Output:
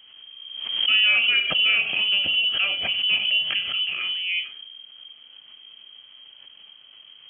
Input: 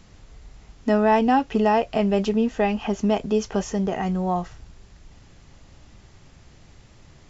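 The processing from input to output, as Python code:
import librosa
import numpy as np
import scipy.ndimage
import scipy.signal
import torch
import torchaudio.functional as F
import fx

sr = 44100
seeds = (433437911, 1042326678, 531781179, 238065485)

y = fx.high_shelf(x, sr, hz=2200.0, db=-7.0)
y = fx.rev_schroeder(y, sr, rt60_s=0.3, comb_ms=26, drr_db=5.0)
y = fx.freq_invert(y, sr, carrier_hz=3200)
y = scipy.signal.sosfilt(scipy.signal.butter(2, 67.0, 'highpass', fs=sr, output='sos'), y)
y = fx.pre_swell(y, sr, db_per_s=47.0)
y = y * 10.0 ** (-3.0 / 20.0)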